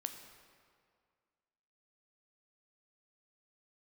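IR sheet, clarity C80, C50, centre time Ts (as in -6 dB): 9.0 dB, 8.0 dB, 29 ms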